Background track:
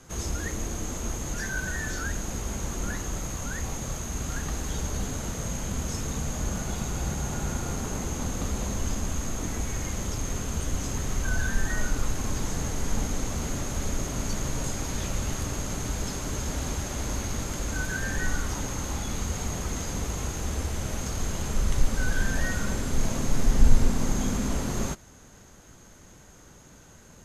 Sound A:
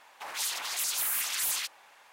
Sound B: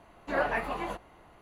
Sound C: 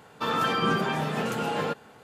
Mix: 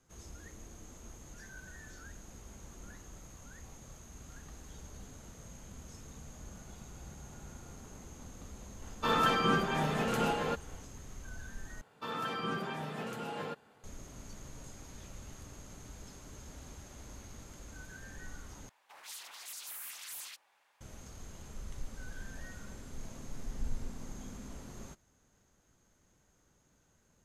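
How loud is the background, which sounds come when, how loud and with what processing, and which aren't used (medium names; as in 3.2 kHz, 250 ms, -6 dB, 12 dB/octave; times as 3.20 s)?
background track -19 dB
8.82 s: add C -1 dB + random flutter of the level, depth 55%
11.81 s: replace with C -11.5 dB
18.69 s: replace with A -14.5 dB
not used: B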